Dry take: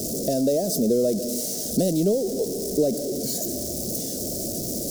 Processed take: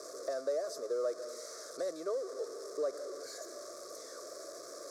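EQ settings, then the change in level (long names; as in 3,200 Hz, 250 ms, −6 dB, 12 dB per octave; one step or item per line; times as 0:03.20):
four-pole ladder band-pass 1,200 Hz, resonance 85%
phaser with its sweep stopped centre 790 Hz, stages 6
+15.5 dB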